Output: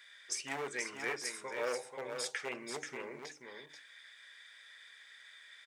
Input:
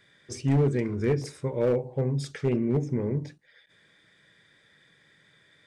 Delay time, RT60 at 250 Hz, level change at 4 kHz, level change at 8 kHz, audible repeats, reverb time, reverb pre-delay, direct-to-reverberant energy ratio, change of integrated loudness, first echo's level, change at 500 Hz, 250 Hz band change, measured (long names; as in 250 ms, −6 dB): 484 ms, no reverb audible, +3.0 dB, +5.0 dB, 1, no reverb audible, no reverb audible, no reverb audible, −12.5 dB, −6.5 dB, −13.0 dB, −22.0 dB